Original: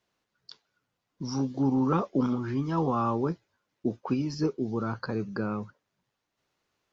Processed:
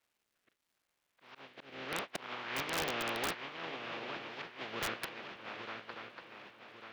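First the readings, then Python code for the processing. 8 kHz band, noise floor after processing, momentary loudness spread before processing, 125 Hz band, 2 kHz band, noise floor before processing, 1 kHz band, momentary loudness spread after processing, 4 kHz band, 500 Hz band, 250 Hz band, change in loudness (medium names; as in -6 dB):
no reading, -84 dBFS, 9 LU, -22.0 dB, +5.5 dB, -83 dBFS, -8.0 dB, 17 LU, +6.0 dB, -11.0 dB, -21.0 dB, -10.0 dB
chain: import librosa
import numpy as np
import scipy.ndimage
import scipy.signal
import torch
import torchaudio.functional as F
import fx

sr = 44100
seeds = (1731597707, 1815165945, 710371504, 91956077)

p1 = fx.spec_flatten(x, sr, power=0.19)
p2 = fx.highpass(p1, sr, hz=520.0, slope=6)
p3 = fx.spec_gate(p2, sr, threshold_db=-25, keep='strong')
p4 = scipy.signal.sosfilt(scipy.signal.butter(4, 3000.0, 'lowpass', fs=sr, output='sos'), p3)
p5 = fx.rider(p4, sr, range_db=10, speed_s=0.5)
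p6 = p4 + (p5 * librosa.db_to_amplitude(1.0))
p7 = fx.auto_swell(p6, sr, attack_ms=613.0)
p8 = fx.rotary_switch(p7, sr, hz=0.75, then_hz=6.3, switch_at_s=3.97)
p9 = p8 + fx.echo_swing(p8, sr, ms=1146, ratio=3, feedback_pct=44, wet_db=-8.0, dry=0)
p10 = (np.mod(10.0 ** (22.5 / 20.0) * p9 + 1.0, 2.0) - 1.0) / 10.0 ** (22.5 / 20.0)
p11 = fx.dmg_crackle(p10, sr, seeds[0], per_s=520.0, level_db=-64.0)
y = p11 * librosa.db_to_amplitude(-4.0)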